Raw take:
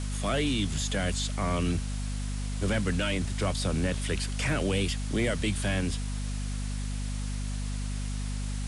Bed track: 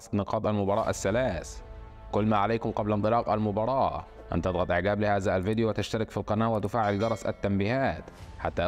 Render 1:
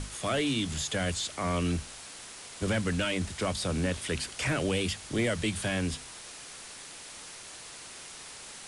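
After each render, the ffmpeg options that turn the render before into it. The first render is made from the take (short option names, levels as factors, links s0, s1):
-af "bandreject=f=50:t=h:w=6,bandreject=f=100:t=h:w=6,bandreject=f=150:t=h:w=6,bandreject=f=200:t=h:w=6,bandreject=f=250:t=h:w=6"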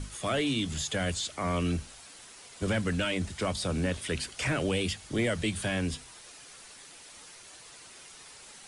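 -af "afftdn=nr=7:nf=-46"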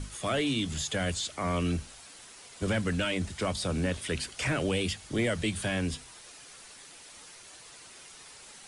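-af anull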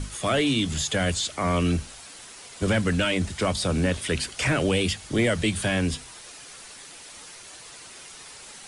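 -af "volume=2"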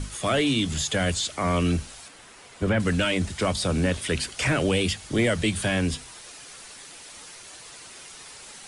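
-filter_complex "[0:a]asettb=1/sr,asplit=3[s0][s1][s2];[s0]atrim=end=2.084[s3];[s1]atrim=start=2.08:end=2.8,asetpts=PTS-STARTPTS,afade=t=in:d=0.004:c=qsin,afade=t=out:st=0.716:d=0.004:c=qsin,acrossover=split=2800[s4][s5];[s5]acompressor=threshold=0.00316:ratio=4:attack=1:release=60[s6];[s4][s6]amix=inputs=2:normalize=0[s7];[s2]atrim=start=2.796[s8];[s3][s7]acrossfade=d=0.004:c1=hsin:c2=qsin[s9];[s9][s8]acrossfade=d=0.004:c1=qsin:c2=hsin"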